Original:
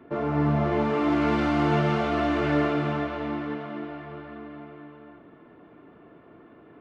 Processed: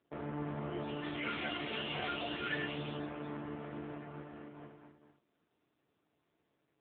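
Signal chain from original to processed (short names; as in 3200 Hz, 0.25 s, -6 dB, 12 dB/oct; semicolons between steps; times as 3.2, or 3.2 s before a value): per-bin compression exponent 0.4; 1.16–1.89 notches 50/100/150/200 Hz; 4.39–4.86 HPF 120 Hz -> 43 Hz 12 dB/oct; gate -26 dBFS, range -27 dB; spectral noise reduction 20 dB; on a send: darkening echo 0.104 s, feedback 17%, low-pass 1100 Hz, level -19 dB; on the sum: gain +2.5 dB; AMR-NB 5.9 kbps 8000 Hz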